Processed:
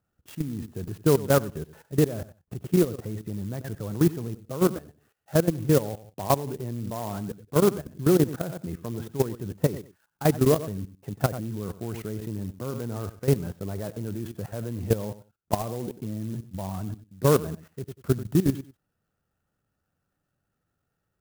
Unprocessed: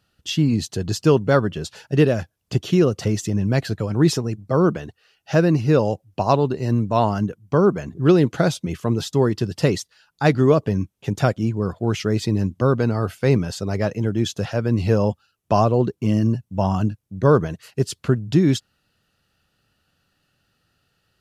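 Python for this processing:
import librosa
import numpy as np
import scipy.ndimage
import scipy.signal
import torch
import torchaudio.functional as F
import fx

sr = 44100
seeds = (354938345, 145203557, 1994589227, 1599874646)

y = fx.echo_feedback(x, sr, ms=93, feedback_pct=20, wet_db=-14.0)
y = fx.level_steps(y, sr, step_db=15)
y = scipy.signal.sosfilt(scipy.signal.butter(2, 1600.0, 'lowpass', fs=sr, output='sos'), y)
y = fx.clock_jitter(y, sr, seeds[0], jitter_ms=0.066)
y = F.gain(torch.from_numpy(y), -2.0).numpy()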